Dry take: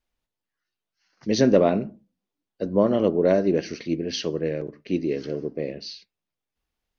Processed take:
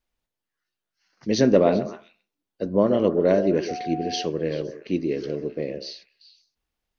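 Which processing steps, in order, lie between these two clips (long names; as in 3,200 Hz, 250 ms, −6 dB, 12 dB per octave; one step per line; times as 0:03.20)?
echo through a band-pass that steps 129 ms, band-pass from 490 Hz, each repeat 1.4 octaves, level −8 dB
0:03.68–0:04.25: steady tone 730 Hz −30 dBFS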